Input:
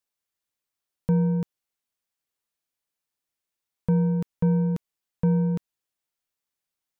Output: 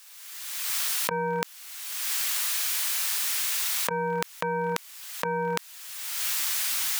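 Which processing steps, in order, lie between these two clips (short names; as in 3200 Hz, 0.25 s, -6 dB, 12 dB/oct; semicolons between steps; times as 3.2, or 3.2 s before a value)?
recorder AGC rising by 33 dB/s; HPF 1300 Hz 12 dB/oct; fast leveller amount 100%; gain -5 dB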